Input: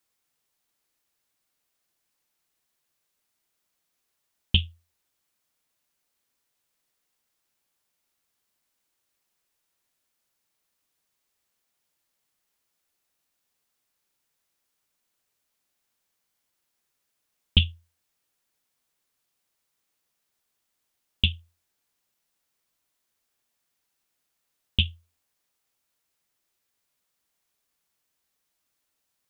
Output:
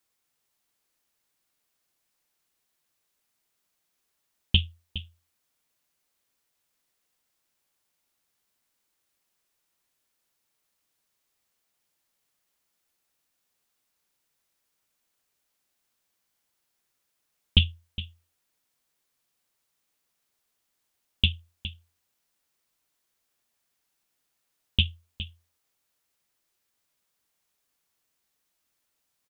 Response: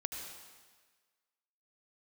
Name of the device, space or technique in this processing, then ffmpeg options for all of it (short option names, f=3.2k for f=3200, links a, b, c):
ducked delay: -filter_complex "[0:a]asplit=3[a][b][c];[b]adelay=413,volume=-8.5dB[d];[c]apad=whole_len=1310000[e];[d][e]sidechaincompress=threshold=-25dB:ratio=8:attack=16:release=1030[f];[a][f]amix=inputs=2:normalize=0"